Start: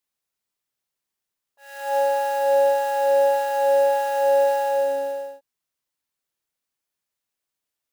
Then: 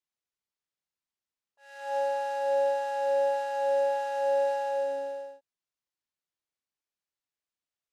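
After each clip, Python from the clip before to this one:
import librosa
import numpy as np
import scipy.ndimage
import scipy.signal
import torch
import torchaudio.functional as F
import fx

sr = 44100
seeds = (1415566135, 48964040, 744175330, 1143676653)

y = scipy.signal.sosfilt(scipy.signal.butter(2, 7000.0, 'lowpass', fs=sr, output='sos'), x)
y = y * librosa.db_to_amplitude(-8.0)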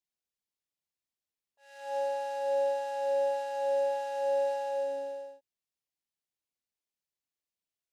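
y = fx.peak_eq(x, sr, hz=1300.0, db=-7.5, octaves=1.0)
y = y * librosa.db_to_amplitude(-1.5)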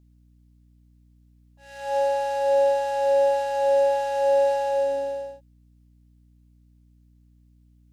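y = fx.add_hum(x, sr, base_hz=60, snr_db=31)
y = y * librosa.db_to_amplitude(9.0)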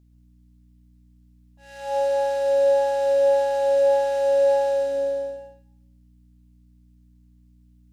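y = fx.rev_plate(x, sr, seeds[0], rt60_s=0.61, hf_ratio=0.85, predelay_ms=110, drr_db=6.5)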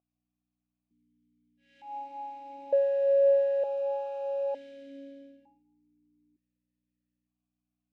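y = fx.vowel_held(x, sr, hz=1.1)
y = y * librosa.db_to_amplitude(-1.5)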